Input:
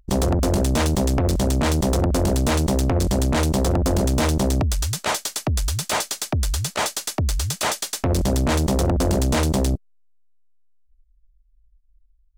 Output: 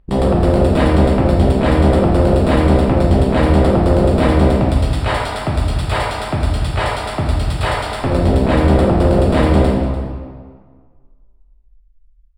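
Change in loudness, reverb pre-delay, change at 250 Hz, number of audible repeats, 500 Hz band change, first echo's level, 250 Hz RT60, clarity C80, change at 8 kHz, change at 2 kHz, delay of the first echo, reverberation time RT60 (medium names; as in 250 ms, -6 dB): +6.5 dB, 6 ms, +8.0 dB, 1, +9.0 dB, -13.5 dB, 1.7 s, 1.5 dB, -11.0 dB, +6.0 dB, 294 ms, 1.8 s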